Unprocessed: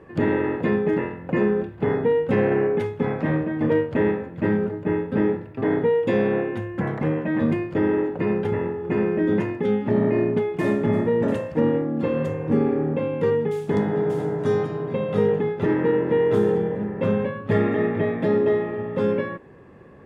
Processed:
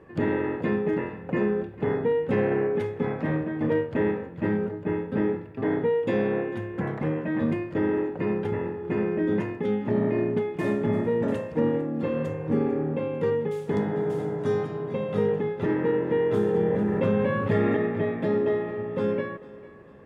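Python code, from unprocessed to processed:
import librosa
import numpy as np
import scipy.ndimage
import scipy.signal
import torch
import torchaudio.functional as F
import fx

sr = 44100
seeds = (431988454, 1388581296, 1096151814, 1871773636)

y = fx.echo_thinned(x, sr, ms=448, feedback_pct=45, hz=190.0, wet_db=-18.5)
y = fx.env_flatten(y, sr, amount_pct=70, at=(16.54, 17.77))
y = y * 10.0 ** (-4.0 / 20.0)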